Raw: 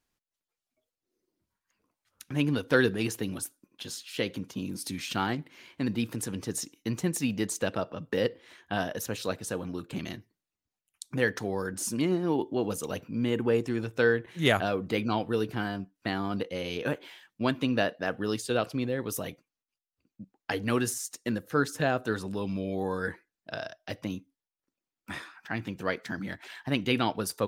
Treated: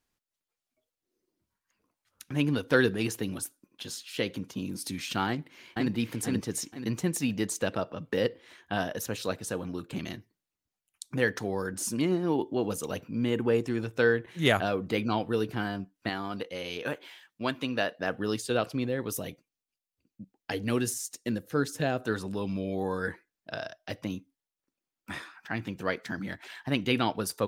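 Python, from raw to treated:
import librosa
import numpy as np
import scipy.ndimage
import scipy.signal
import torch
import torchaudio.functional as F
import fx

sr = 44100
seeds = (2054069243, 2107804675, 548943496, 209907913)

y = fx.echo_throw(x, sr, start_s=5.28, length_s=0.64, ms=480, feedback_pct=35, wet_db=-1.0)
y = fx.low_shelf(y, sr, hz=400.0, db=-7.5, at=(16.09, 17.98))
y = fx.peak_eq(y, sr, hz=1200.0, db=-6.0, octaves=1.4, at=(19.13, 22.0))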